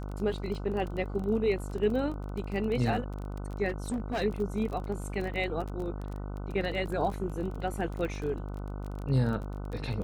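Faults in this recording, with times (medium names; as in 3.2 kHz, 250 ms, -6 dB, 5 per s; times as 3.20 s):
buzz 50 Hz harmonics 30 -37 dBFS
crackle 27 per s -35 dBFS
3.68–4.22 s: clipped -27.5 dBFS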